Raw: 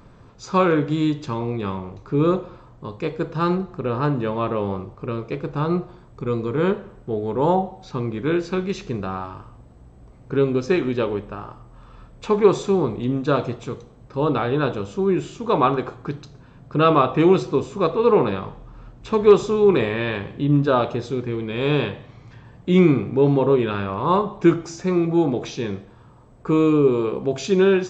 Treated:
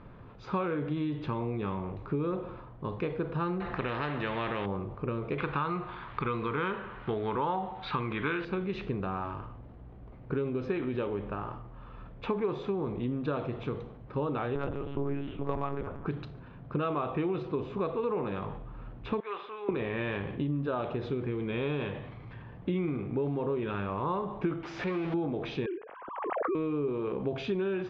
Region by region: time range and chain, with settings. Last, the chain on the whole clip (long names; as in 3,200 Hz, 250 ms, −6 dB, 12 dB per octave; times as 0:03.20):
0:03.60–0:04.66: parametric band 1,800 Hz +10 dB 0.37 octaves + double-tracking delay 15 ms −14 dB + every bin compressed towards the loudest bin 2 to 1
0:05.38–0:08.45: flat-topped bell 2,000 Hz +12.5 dB 2.6 octaves + one half of a high-frequency compander encoder only
0:14.55–0:16.06: spectral tilt −1.5 dB per octave + mains-hum notches 50/100/150/200/250/300/350/400 Hz + one-pitch LPC vocoder at 8 kHz 140 Hz
0:19.20–0:19.69: high-pass filter 1,400 Hz + high-frequency loss of the air 410 metres
0:24.63–0:25.14: converter with a step at zero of −25 dBFS + low-shelf EQ 480 Hz −10 dB
0:25.66–0:26.55: three sine waves on the formant tracks + high-frequency loss of the air 460 metres + background raised ahead of every attack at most 52 dB per second
whole clip: low-pass filter 3,200 Hz 24 dB per octave; downward compressor 6 to 1, threshold −27 dBFS; transient designer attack +1 dB, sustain +5 dB; level −2.5 dB